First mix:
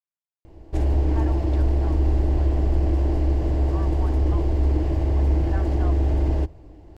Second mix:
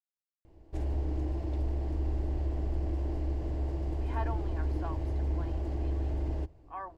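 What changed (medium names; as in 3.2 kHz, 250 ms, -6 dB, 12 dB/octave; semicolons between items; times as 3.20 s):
speech: entry +3.00 s; background -11.5 dB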